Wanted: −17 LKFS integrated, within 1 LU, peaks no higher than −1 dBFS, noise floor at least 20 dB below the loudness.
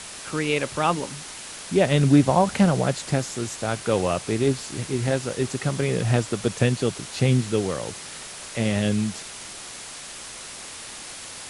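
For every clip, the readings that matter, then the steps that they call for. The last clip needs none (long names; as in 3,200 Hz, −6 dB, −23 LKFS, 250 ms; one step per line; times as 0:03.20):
background noise floor −39 dBFS; target noise floor −44 dBFS; integrated loudness −23.5 LKFS; sample peak −5.0 dBFS; target loudness −17.0 LKFS
→ broadband denoise 6 dB, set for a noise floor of −39 dBFS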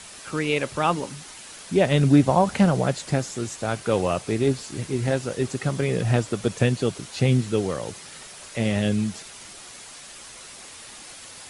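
background noise floor −43 dBFS; target noise floor −44 dBFS
→ broadband denoise 6 dB, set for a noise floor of −43 dBFS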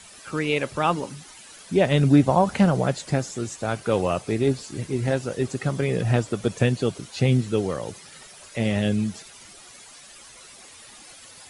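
background noise floor −47 dBFS; integrated loudness −23.5 LKFS; sample peak −5.0 dBFS; target loudness −17.0 LKFS
→ level +6.5 dB
brickwall limiter −1 dBFS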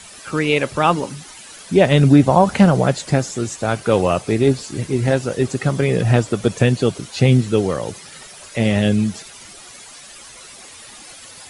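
integrated loudness −17.5 LKFS; sample peak −1.0 dBFS; background noise floor −40 dBFS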